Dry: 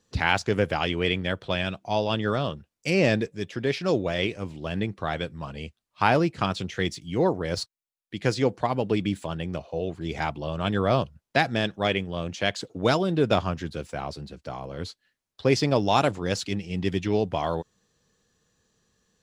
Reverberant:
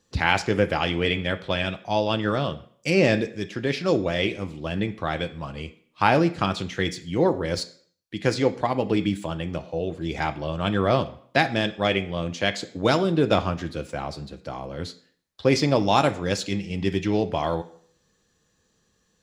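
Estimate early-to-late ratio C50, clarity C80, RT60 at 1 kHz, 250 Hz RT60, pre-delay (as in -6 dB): 15.5 dB, 19.0 dB, 0.55 s, 0.60 s, 3 ms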